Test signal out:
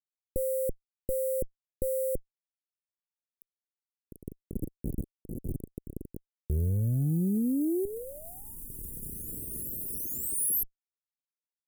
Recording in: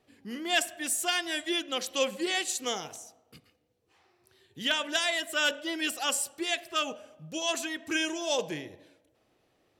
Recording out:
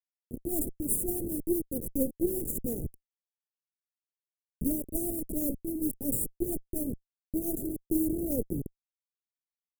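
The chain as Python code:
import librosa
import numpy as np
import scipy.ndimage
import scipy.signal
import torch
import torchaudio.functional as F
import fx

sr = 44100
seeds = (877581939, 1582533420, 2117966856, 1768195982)

y = fx.delta_hold(x, sr, step_db=-29.5)
y = fx.cheby_harmonics(y, sr, harmonics=(3, 4), levels_db=(-19, -14), full_scale_db=-15.5)
y = scipy.signal.sosfilt(scipy.signal.cheby2(4, 60, [1100.0, 4400.0], 'bandstop', fs=sr, output='sos'), y)
y = F.gain(torch.from_numpy(y), 8.0).numpy()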